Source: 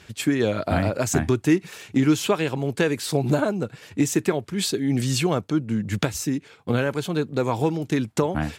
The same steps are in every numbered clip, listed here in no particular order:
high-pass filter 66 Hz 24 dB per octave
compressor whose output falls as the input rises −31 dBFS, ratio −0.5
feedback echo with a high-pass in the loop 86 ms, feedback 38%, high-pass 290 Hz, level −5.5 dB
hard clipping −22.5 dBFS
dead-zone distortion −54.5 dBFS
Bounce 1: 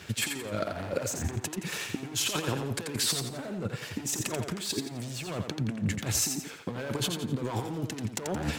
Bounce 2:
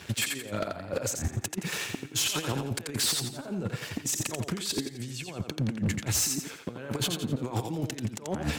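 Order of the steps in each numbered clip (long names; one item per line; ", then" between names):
hard clipping, then high-pass filter, then compressor whose output falls as the input rises, then dead-zone distortion, then feedback echo with a high-pass in the loop
dead-zone distortion, then high-pass filter, then compressor whose output falls as the input rises, then feedback echo with a high-pass in the loop, then hard clipping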